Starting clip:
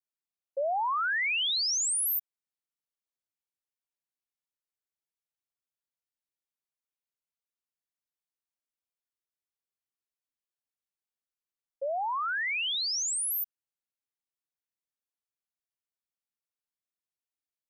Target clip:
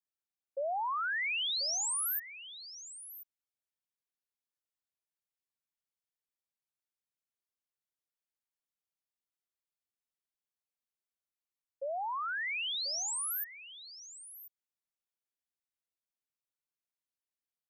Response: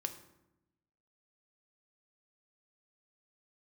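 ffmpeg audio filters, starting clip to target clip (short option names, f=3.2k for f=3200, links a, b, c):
-af "aecho=1:1:1037:0.188,volume=-5dB"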